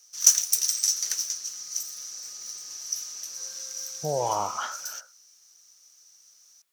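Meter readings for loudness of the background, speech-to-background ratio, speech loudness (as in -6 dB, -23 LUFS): -27.0 LUFS, -3.5 dB, -30.5 LUFS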